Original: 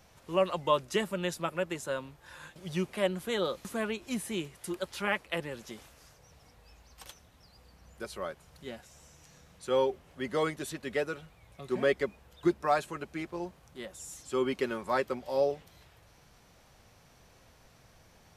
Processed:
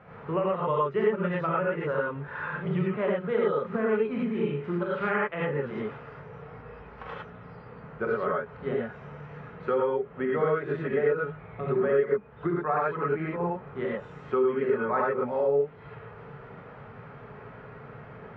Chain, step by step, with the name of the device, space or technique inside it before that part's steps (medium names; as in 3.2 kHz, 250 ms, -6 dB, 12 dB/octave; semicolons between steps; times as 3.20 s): 3.96–5.16 s: flutter echo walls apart 6.9 m, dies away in 0.34 s; gated-style reverb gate 130 ms rising, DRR -6 dB; bass amplifier (compression 4:1, threshold -36 dBFS, peak gain reduction 19 dB; cabinet simulation 64–2100 Hz, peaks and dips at 66 Hz -9 dB, 180 Hz +5 dB, 300 Hz -5 dB, 430 Hz +7 dB, 1.3 kHz +7 dB); trim +7.5 dB